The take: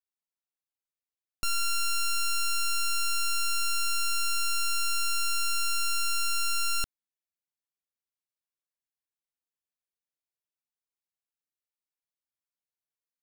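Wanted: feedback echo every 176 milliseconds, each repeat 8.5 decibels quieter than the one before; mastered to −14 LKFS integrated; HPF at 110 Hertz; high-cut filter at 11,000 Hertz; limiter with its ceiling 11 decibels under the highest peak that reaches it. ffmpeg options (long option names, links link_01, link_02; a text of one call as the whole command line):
ffmpeg -i in.wav -af "highpass=110,lowpass=11000,alimiter=level_in=6dB:limit=-24dB:level=0:latency=1,volume=-6dB,aecho=1:1:176|352|528|704:0.376|0.143|0.0543|0.0206,volume=25.5dB" out.wav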